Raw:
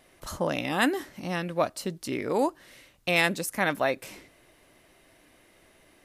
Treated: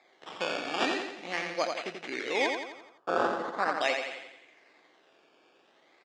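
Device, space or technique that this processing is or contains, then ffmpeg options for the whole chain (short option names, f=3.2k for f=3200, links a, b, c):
circuit-bent sampling toy: -filter_complex "[0:a]acrusher=samples=15:mix=1:aa=0.000001:lfo=1:lforange=15:lforate=0.42,highpass=86,highpass=490,equalizer=f=600:t=q:w=4:g=-5,equalizer=f=990:t=q:w=4:g=-6,equalizer=f=1.4k:t=q:w=4:g=-5,equalizer=f=2.2k:t=q:w=4:g=6,equalizer=f=5.6k:t=q:w=4:g=-5,lowpass=f=5.8k:w=0.5412,lowpass=f=5.8k:w=1.3066,asettb=1/sr,asplit=3[a][b][c];[a]atrim=end=2.464[d];[b]atrim=start=2.46:end=3.81,asetpts=PTS-STARTPTS,afade=t=in:d=0.004:c=qsin,afade=t=out:st=1.346:d=0.004:c=qsin,highshelf=f=1.7k:t=q:w=3:g=-9.5[e];[c]atrim=start=3.806[f];[d][e]acrossfade=d=0.004:c1=hsin:c2=qsin[g];[g][f]acrossfade=d=0.004:c1=qsin:c2=hsin,aecho=1:1:86|172|258|344|430|516:0.562|0.281|0.141|0.0703|0.0351|0.0176"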